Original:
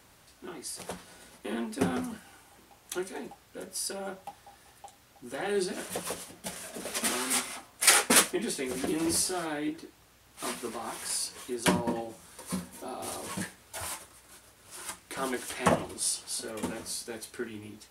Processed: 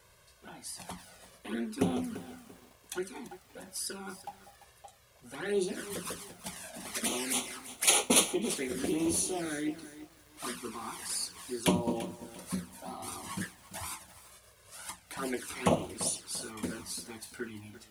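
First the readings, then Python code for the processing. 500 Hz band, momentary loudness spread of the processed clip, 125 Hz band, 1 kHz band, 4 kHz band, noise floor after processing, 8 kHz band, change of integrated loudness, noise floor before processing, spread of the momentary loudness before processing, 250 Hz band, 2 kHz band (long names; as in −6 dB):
−1.5 dB, 18 LU, 0.0 dB, −4.5 dB, −2.5 dB, −61 dBFS, −2.5 dB, −2.5 dB, −60 dBFS, 16 LU, −0.5 dB, −5.5 dB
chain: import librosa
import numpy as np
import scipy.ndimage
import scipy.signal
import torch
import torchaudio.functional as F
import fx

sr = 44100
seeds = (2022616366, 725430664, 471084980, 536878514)

y = fx.env_flanger(x, sr, rest_ms=2.0, full_db=-26.5)
y = fx.echo_crushed(y, sr, ms=341, feedback_pct=35, bits=8, wet_db=-14)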